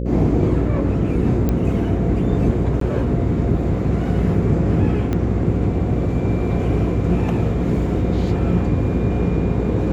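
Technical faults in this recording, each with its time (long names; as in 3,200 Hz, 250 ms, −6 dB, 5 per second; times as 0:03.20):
mains buzz 60 Hz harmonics 9 −23 dBFS
0:01.49: click −9 dBFS
0:02.80–0:02.81: drop-out 13 ms
0:05.13: click −11 dBFS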